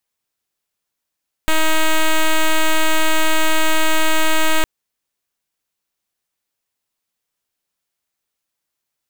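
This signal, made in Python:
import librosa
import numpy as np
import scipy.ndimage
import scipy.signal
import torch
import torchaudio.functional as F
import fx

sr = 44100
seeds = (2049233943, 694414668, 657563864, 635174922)

y = fx.pulse(sr, length_s=3.16, hz=316.0, level_db=-13.0, duty_pct=6)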